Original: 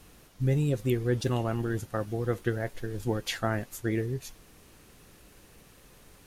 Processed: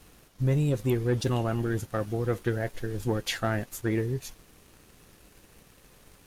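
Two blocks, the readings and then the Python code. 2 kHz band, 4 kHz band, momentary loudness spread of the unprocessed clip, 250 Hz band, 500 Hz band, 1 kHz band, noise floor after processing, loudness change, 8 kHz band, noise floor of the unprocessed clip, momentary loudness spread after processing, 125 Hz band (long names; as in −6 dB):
+1.0 dB, +2.0 dB, 8 LU, +1.5 dB, +1.0 dB, +1.0 dB, −58 dBFS, +1.5 dB, +2.0 dB, −56 dBFS, 7 LU, +1.5 dB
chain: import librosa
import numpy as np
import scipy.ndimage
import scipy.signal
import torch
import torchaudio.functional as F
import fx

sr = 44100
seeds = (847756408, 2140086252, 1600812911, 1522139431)

y = fx.leveller(x, sr, passes=1)
y = y * librosa.db_to_amplitude(-1.5)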